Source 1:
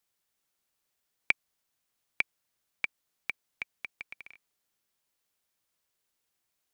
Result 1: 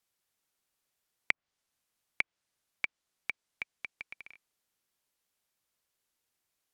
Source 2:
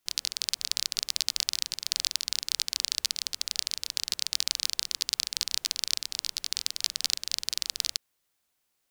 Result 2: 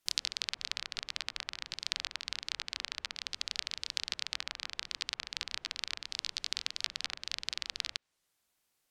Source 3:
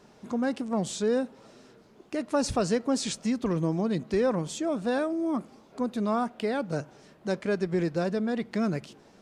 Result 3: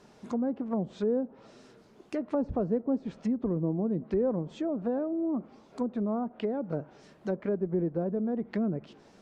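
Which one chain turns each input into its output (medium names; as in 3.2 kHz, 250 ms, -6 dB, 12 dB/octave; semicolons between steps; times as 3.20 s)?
dynamic bell 120 Hz, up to -5 dB, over -52 dBFS, Q 2.7; low-pass that closes with the level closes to 590 Hz, closed at -25 dBFS; trim -1 dB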